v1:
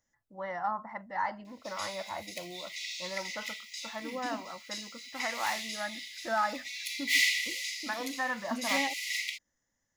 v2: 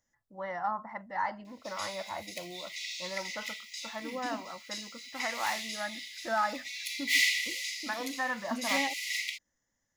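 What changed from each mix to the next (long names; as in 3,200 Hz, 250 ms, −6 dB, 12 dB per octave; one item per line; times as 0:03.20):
nothing changed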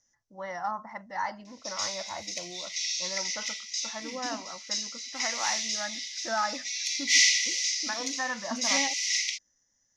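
master: add low-pass with resonance 5,900 Hz, resonance Q 6.6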